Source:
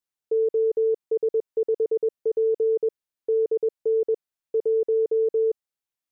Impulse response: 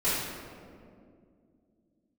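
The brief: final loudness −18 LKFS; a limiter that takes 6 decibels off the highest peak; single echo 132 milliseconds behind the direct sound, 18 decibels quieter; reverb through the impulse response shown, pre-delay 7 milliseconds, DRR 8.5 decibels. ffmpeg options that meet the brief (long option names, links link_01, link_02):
-filter_complex "[0:a]alimiter=limit=-24dB:level=0:latency=1,aecho=1:1:132:0.126,asplit=2[link_01][link_02];[1:a]atrim=start_sample=2205,adelay=7[link_03];[link_02][link_03]afir=irnorm=-1:irlink=0,volume=-20dB[link_04];[link_01][link_04]amix=inputs=2:normalize=0,volume=11.5dB"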